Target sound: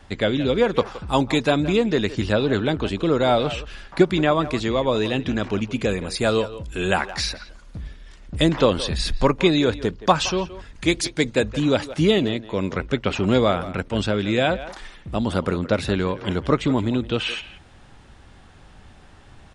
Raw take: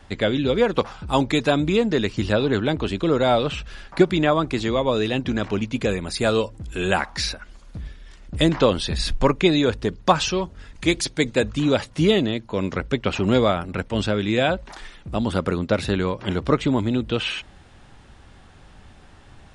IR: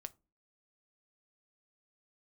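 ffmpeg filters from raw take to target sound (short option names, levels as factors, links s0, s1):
-filter_complex "[0:a]asplit=2[s0][s1];[s1]adelay=170,highpass=300,lowpass=3400,asoftclip=type=hard:threshold=0.251,volume=0.2[s2];[s0][s2]amix=inputs=2:normalize=0"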